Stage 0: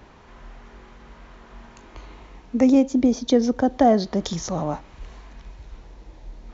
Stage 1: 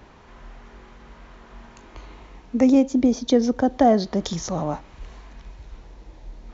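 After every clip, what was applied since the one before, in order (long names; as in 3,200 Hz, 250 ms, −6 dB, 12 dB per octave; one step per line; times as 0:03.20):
no processing that can be heard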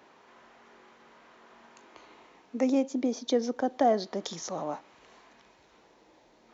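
high-pass filter 310 Hz 12 dB per octave
level −6 dB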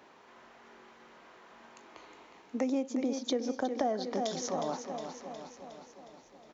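on a send: repeating echo 362 ms, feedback 59%, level −9.5 dB
on the sum: downward compressor 4 to 1, threshold −28 dBFS, peak gain reduction 9 dB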